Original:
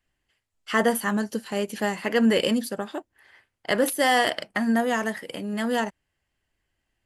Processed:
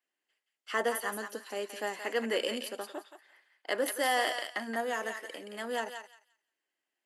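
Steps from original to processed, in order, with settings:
high-pass filter 300 Hz 24 dB per octave
on a send: feedback echo with a high-pass in the loop 174 ms, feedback 22%, high-pass 1,200 Hz, level −5 dB
on the sum: level −8 dB

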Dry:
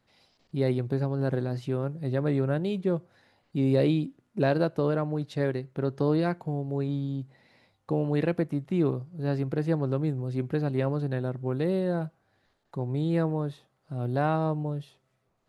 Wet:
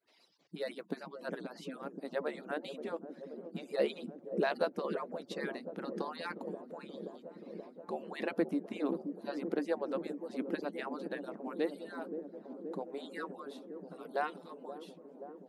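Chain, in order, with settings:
harmonic-percussive split with one part muted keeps percussive
high-pass filter 160 Hz 24 dB per octave
delay with a low-pass on its return 528 ms, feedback 81%, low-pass 420 Hz, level −5 dB
level −2 dB

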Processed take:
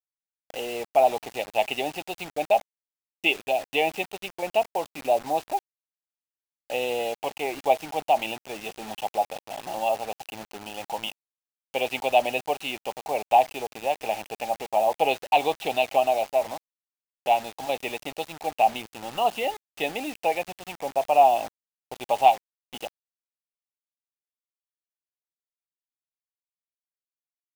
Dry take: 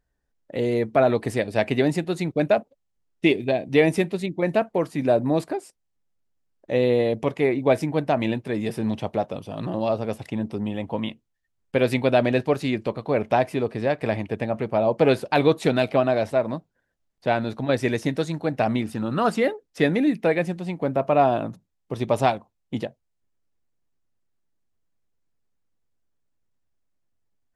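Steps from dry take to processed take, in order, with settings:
pair of resonant band-passes 1,500 Hz, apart 1.8 octaves
bit-depth reduction 8 bits, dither none
level +9 dB

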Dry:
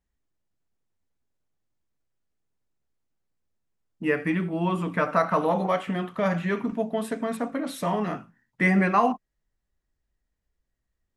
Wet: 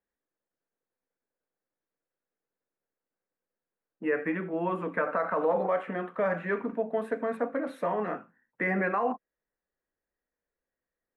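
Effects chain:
three-way crossover with the lows and the highs turned down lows −18 dB, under 220 Hz, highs −20 dB, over 2,700 Hz
brickwall limiter −18 dBFS, peak gain reduction 8 dB
thirty-one-band graphic EQ 500 Hz +8 dB, 1,600 Hz +5 dB, 3,150 Hz −5 dB, 5,000 Hz −3 dB, 10,000 Hz +5 dB
level −2.5 dB

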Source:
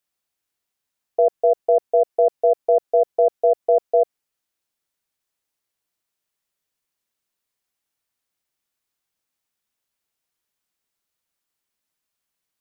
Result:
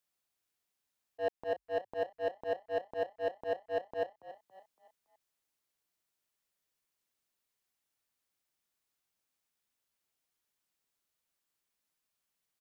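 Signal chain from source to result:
leveller curve on the samples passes 2
volume swells 598 ms
on a send: echo with shifted repeats 281 ms, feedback 40%, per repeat +43 Hz, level −15 dB

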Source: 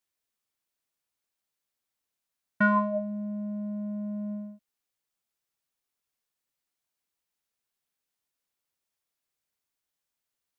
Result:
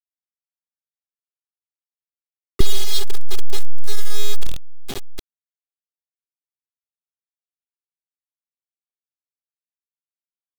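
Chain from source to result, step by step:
dense smooth reverb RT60 3.2 s, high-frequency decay 0.3×, pre-delay 110 ms, DRR 20 dB
automatic gain control gain up to 14.5 dB
low-pass filter sweep 530 Hz → 220 Hz, 0:03.51–0:06.35
in parallel at +2 dB: downward compressor 10 to 1, threshold −20 dBFS, peak gain reduction 11.5 dB
on the sum: hard clipping −13.5 dBFS, distortion −10 dB
low-shelf EQ 180 Hz +8 dB
full-wave rectification
brick-wall band-stop 400–3,000 Hz
bit reduction 6 bits
level +8 dB

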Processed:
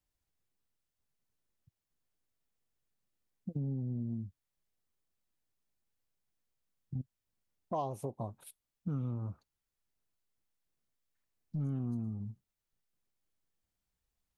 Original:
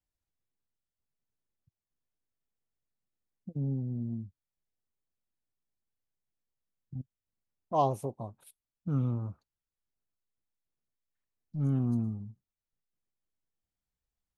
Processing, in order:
downward compressor 6 to 1, threshold −37 dBFS, peak gain reduction 14.5 dB
level +3.5 dB

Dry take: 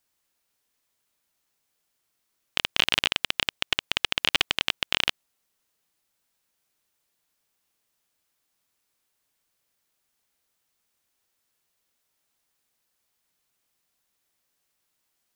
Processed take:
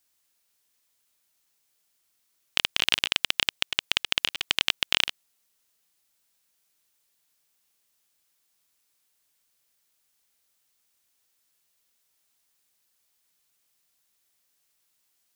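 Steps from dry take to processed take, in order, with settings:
high-shelf EQ 2,300 Hz +7.5 dB
compressor whose output falls as the input rises −21 dBFS, ratio −0.5
level −3.5 dB

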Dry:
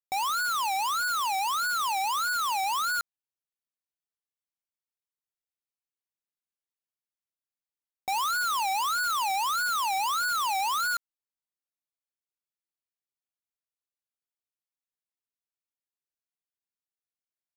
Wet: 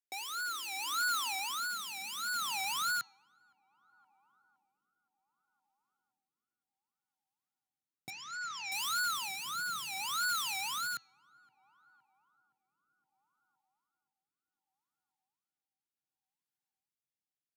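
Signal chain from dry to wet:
high-pass filter sweep 410 Hz → 130 Hz, 0:00.19–0:02.99
0:08.10–0:08.72: Chebyshev low-pass with heavy ripple 7,300 Hz, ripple 9 dB
in parallel at −6 dB: soft clipping −34 dBFS, distortion −19 dB
on the sum: flat-topped bell 700 Hz −10.5 dB
hum removal 331.8 Hz, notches 20
on a send: tape delay 517 ms, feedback 84%, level −24 dB, low-pass 1,200 Hz
on the sum: rotating-speaker cabinet horn 0.65 Hz
level −3.5 dB

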